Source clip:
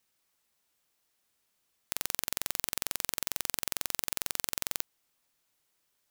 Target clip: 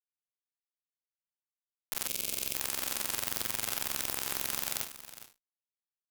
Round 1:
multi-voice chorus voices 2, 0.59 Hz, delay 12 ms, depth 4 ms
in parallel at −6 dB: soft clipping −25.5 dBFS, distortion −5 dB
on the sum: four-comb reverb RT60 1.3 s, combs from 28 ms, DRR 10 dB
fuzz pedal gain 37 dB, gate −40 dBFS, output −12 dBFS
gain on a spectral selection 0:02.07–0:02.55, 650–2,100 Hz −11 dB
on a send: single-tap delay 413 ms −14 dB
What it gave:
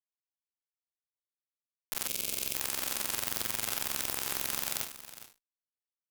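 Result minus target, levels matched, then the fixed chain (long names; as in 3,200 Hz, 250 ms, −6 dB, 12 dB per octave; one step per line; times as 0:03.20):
soft clipping: distortion −4 dB
multi-voice chorus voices 2, 0.59 Hz, delay 12 ms, depth 4 ms
in parallel at −6 dB: soft clipping −37 dBFS, distortion −1 dB
on the sum: four-comb reverb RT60 1.3 s, combs from 28 ms, DRR 10 dB
fuzz pedal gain 37 dB, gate −40 dBFS, output −12 dBFS
gain on a spectral selection 0:02.07–0:02.55, 650–2,100 Hz −11 dB
on a send: single-tap delay 413 ms −14 dB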